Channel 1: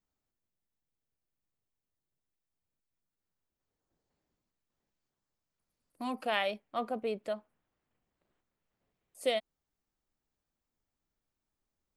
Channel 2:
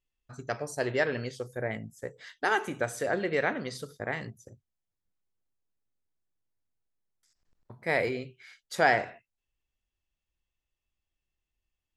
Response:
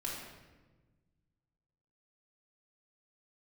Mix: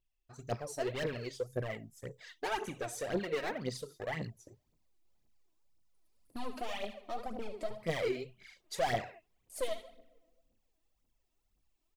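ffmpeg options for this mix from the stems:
-filter_complex "[0:a]acompressor=threshold=-38dB:ratio=4,aeval=exprs='clip(val(0),-1,0.00708)':channel_layout=same,adelay=350,volume=-1dB,asplit=3[link_01][link_02][link_03];[link_02]volume=-11.5dB[link_04];[link_03]volume=-8dB[link_05];[1:a]volume=-5.5dB[link_06];[2:a]atrim=start_sample=2205[link_07];[link_04][link_07]afir=irnorm=-1:irlink=0[link_08];[link_05]aecho=0:1:74|148|222|296|370:1|0.33|0.109|0.0359|0.0119[link_09];[link_01][link_06][link_08][link_09]amix=inputs=4:normalize=0,equalizer=frequency=1500:width=2.6:gain=-6,volume=33dB,asoftclip=hard,volume=-33dB,aphaser=in_gain=1:out_gain=1:delay=3.3:decay=0.67:speed=1.9:type=triangular"

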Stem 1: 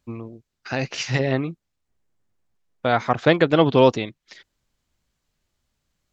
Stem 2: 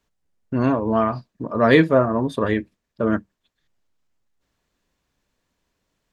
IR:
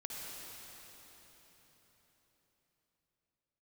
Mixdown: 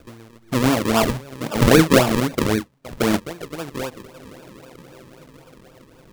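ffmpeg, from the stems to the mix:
-filter_complex "[0:a]volume=-16dB,asplit=2[link_01][link_02];[link_02]volume=-10.5dB[link_03];[1:a]volume=1.5dB,asplit=2[link_04][link_05];[link_05]apad=whole_len=269980[link_06];[link_01][link_06]sidechaincompress=threshold=-17dB:ratio=8:attack=34:release=870[link_07];[2:a]atrim=start_sample=2205[link_08];[link_03][link_08]afir=irnorm=-1:irlink=0[link_09];[link_07][link_04][link_09]amix=inputs=3:normalize=0,acompressor=mode=upward:threshold=-32dB:ratio=2.5,acrusher=samples=42:mix=1:aa=0.000001:lfo=1:lforange=42:lforate=3.8"

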